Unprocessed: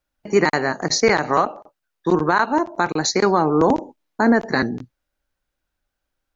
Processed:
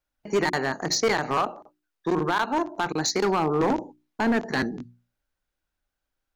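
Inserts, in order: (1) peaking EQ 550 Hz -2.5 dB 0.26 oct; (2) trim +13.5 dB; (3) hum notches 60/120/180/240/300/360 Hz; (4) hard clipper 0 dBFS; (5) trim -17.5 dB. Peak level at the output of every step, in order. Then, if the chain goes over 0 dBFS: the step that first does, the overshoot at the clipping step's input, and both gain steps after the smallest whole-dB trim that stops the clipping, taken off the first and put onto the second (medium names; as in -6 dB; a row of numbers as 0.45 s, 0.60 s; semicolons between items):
-4.5 dBFS, +9.0 dBFS, +9.5 dBFS, 0.0 dBFS, -17.5 dBFS; step 2, 9.5 dB; step 2 +3.5 dB, step 5 -7.5 dB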